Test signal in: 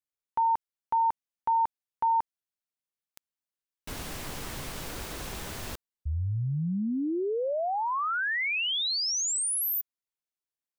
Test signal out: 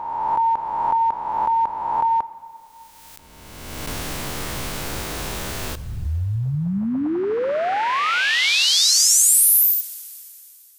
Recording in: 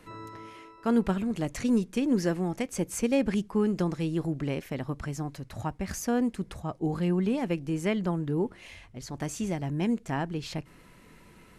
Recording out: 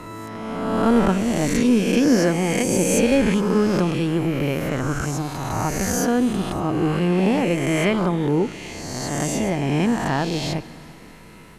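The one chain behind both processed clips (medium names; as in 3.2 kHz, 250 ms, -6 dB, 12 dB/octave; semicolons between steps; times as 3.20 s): reverse spectral sustain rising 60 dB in 1.79 s; plate-style reverb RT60 3.1 s, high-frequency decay 0.95×, DRR 15.5 dB; trim +6 dB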